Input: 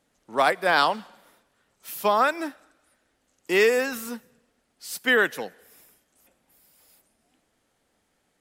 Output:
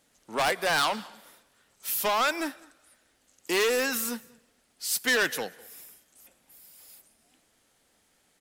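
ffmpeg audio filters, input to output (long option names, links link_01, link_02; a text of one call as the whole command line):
ffmpeg -i in.wav -filter_complex "[0:a]asoftclip=type=tanh:threshold=-23dB,highshelf=frequency=2300:gain=8,asplit=2[link_01][link_02];[link_02]adelay=198.3,volume=-25dB,highshelf=frequency=4000:gain=-4.46[link_03];[link_01][link_03]amix=inputs=2:normalize=0" out.wav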